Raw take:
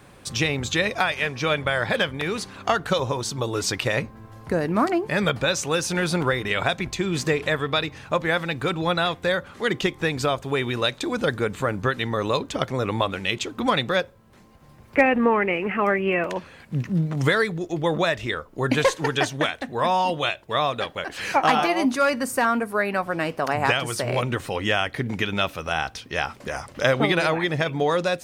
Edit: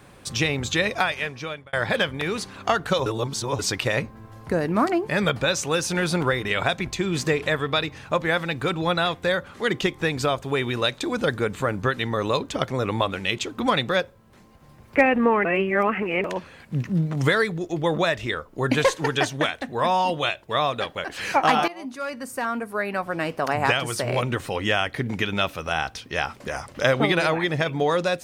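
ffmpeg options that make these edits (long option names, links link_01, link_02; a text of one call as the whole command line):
ffmpeg -i in.wav -filter_complex "[0:a]asplit=7[link_01][link_02][link_03][link_04][link_05][link_06][link_07];[link_01]atrim=end=1.73,asetpts=PTS-STARTPTS,afade=type=out:start_time=1.01:duration=0.72[link_08];[link_02]atrim=start=1.73:end=3.062,asetpts=PTS-STARTPTS,afade=type=in:duration=0.004:curve=hsin[link_09];[link_03]atrim=start=3.058:end=3.592,asetpts=PTS-STARTPTS,areverse[link_10];[link_04]atrim=start=3.588:end=15.452[link_11];[link_05]atrim=start=15.448:end=16.242,asetpts=PTS-STARTPTS,areverse[link_12];[link_06]atrim=start=16.238:end=21.68,asetpts=PTS-STARTPTS,afade=type=out:start_time=5.438:duration=0.004:curve=hsin:silence=0.125893[link_13];[link_07]atrim=start=21.68,asetpts=PTS-STARTPTS,afade=type=in:duration=1.77:silence=0.125893[link_14];[link_08][link_09]concat=n=2:v=0:a=1[link_15];[link_15][link_10]acrossfade=duration=0.004:curve1=hsin:curve2=hsin[link_16];[link_16][link_11]acrossfade=duration=0.004:curve1=hsin:curve2=hsin[link_17];[link_17][link_12]acrossfade=duration=0.004:curve1=hsin:curve2=hsin[link_18];[link_13][link_14]concat=n=2:v=0:a=1[link_19];[link_18][link_19]acrossfade=duration=0.004:curve1=hsin:curve2=hsin" out.wav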